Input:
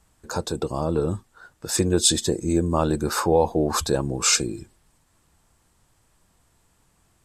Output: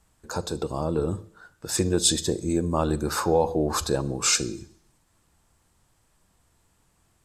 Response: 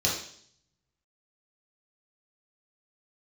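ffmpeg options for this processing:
-filter_complex "[0:a]asplit=2[a][b];[1:a]atrim=start_sample=2205,adelay=40[c];[b][c]afir=irnorm=-1:irlink=0,volume=-28dB[d];[a][d]amix=inputs=2:normalize=0,volume=-2.5dB"

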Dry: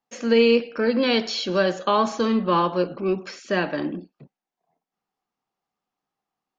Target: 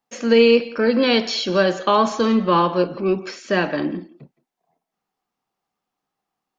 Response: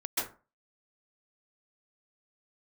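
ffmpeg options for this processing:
-filter_complex "[0:a]asplit=2[a][b];[1:a]atrim=start_sample=2205,afade=t=out:st=0.18:d=0.01,atrim=end_sample=8379,adelay=41[c];[b][c]afir=irnorm=-1:irlink=0,volume=-18dB[d];[a][d]amix=inputs=2:normalize=0,volume=3.5dB"

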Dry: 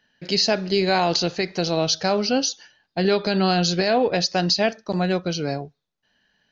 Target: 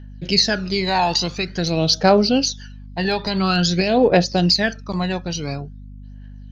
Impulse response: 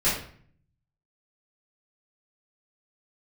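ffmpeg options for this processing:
-af "aphaser=in_gain=1:out_gain=1:delay=1.2:decay=0.65:speed=0.48:type=triangular,aeval=exprs='val(0)+0.0158*(sin(2*PI*50*n/s)+sin(2*PI*2*50*n/s)/2+sin(2*PI*3*50*n/s)/3+sin(2*PI*4*50*n/s)/4+sin(2*PI*5*50*n/s)/5)':c=same"

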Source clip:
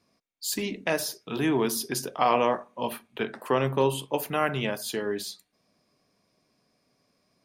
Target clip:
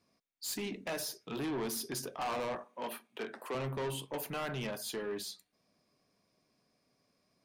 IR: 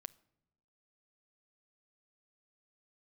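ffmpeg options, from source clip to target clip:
-filter_complex "[0:a]asoftclip=type=tanh:threshold=-27.5dB,asettb=1/sr,asplit=3[a][b][c];[a]atrim=end=2.644[d];[b]atrim=start=2.64:end=3.55,asetpts=PTS-STARTPTS,afade=t=in:d=0.004:c=qsin,afade=t=out:st=0.906:d=0.004:c=qsin,highpass=250[e];[c]atrim=start=3.546[f];[d][e]acrossfade=d=0.004:c1=hsin:c2=qsin[g];[g][f]acrossfade=d=0.004:c1=qsin:c2=hsin,volume=-5dB"

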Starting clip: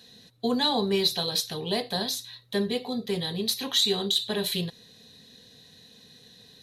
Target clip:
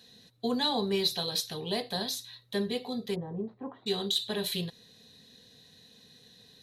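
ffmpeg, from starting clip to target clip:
-filter_complex "[0:a]asplit=3[a][b][c];[a]afade=t=out:st=3.14:d=0.02[d];[b]lowpass=f=1.1k:w=0.5412,lowpass=f=1.1k:w=1.3066,afade=t=in:st=3.14:d=0.02,afade=t=out:st=3.86:d=0.02[e];[c]afade=t=in:st=3.86:d=0.02[f];[d][e][f]amix=inputs=3:normalize=0,volume=-4dB"

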